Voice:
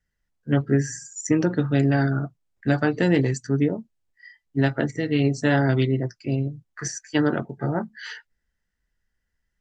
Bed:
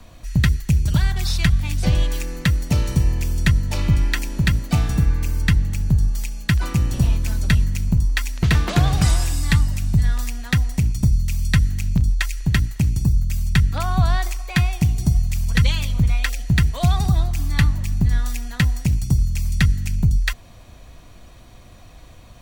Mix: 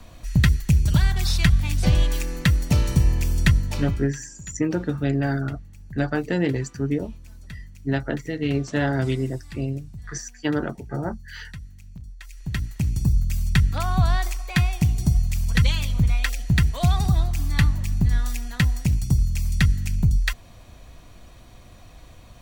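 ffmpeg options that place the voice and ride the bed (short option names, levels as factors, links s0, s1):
-filter_complex "[0:a]adelay=3300,volume=0.708[s0];[1:a]volume=9.44,afade=t=out:st=3.47:d=0.65:silence=0.0841395,afade=t=in:st=12.2:d=0.92:silence=0.1[s1];[s0][s1]amix=inputs=2:normalize=0"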